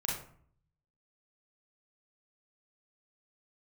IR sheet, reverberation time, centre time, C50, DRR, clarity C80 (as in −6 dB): 0.55 s, 44 ms, 2.5 dB, −3.5 dB, 7.5 dB